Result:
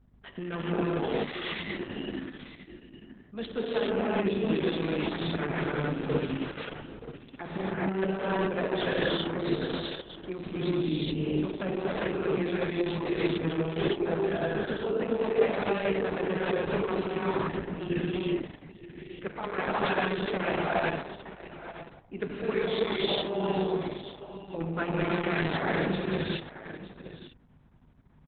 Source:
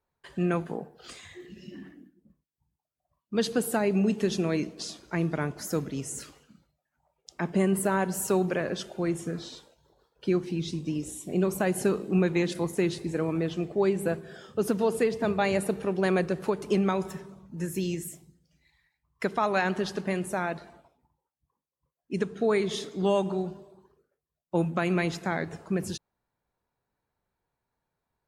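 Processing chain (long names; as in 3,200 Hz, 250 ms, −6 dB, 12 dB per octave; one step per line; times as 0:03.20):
high-pass filter 160 Hz 12 dB per octave
mains-hum notches 60/120/180/240/300/360/420/480 Hz
reversed playback
downward compressor 12 to 1, threshold −36 dBFS, peak gain reduction 16.5 dB
reversed playback
mains hum 50 Hz, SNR 20 dB
in parallel at −9 dB: bit reduction 5 bits
on the sum: single-tap delay 922 ms −14 dB
reverb whose tail is shaped and stops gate 450 ms rising, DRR −6.5 dB
downsampling to 8,000 Hz
level +6 dB
Opus 6 kbit/s 48,000 Hz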